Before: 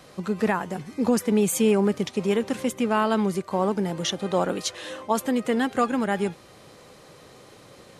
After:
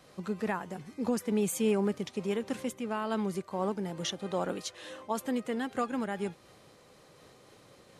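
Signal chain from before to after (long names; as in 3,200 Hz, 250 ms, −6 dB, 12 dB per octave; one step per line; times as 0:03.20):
amplitude modulation by smooth noise, depth 50%
level −6.5 dB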